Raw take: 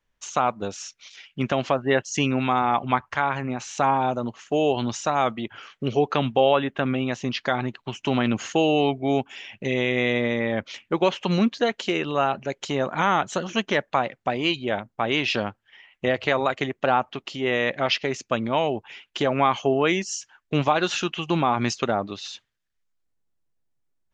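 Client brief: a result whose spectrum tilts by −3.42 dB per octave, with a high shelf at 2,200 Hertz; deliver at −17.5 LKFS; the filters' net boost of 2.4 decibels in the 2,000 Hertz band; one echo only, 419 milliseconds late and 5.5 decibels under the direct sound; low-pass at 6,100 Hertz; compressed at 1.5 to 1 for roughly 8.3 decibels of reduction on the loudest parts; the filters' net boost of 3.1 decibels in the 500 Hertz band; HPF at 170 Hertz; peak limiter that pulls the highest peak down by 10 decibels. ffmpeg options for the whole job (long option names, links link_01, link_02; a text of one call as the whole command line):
ffmpeg -i in.wav -af "highpass=170,lowpass=6100,equalizer=frequency=500:width_type=o:gain=4,equalizer=frequency=2000:width_type=o:gain=7,highshelf=frequency=2200:gain=-7.5,acompressor=threshold=-36dB:ratio=1.5,alimiter=limit=-21.5dB:level=0:latency=1,aecho=1:1:419:0.531,volume=15dB" out.wav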